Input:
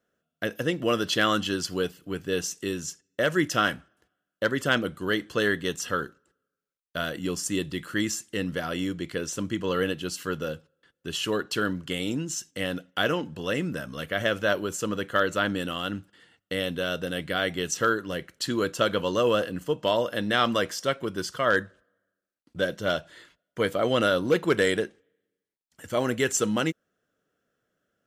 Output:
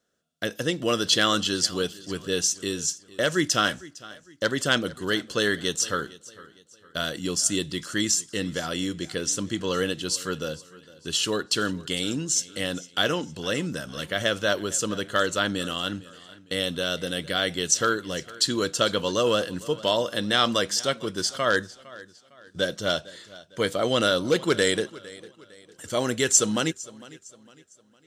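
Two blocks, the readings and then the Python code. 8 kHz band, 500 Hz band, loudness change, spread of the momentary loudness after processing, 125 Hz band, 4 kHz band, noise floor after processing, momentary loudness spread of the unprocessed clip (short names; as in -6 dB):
+9.0 dB, 0.0 dB, +2.0 dB, 13 LU, 0.0 dB, +6.0 dB, -57 dBFS, 9 LU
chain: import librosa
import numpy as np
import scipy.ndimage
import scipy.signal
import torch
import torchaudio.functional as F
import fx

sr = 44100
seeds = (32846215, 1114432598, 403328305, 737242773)

y = fx.band_shelf(x, sr, hz=5700.0, db=9.0, octaves=1.7)
y = fx.echo_warbled(y, sr, ms=456, feedback_pct=39, rate_hz=2.8, cents=50, wet_db=-20.0)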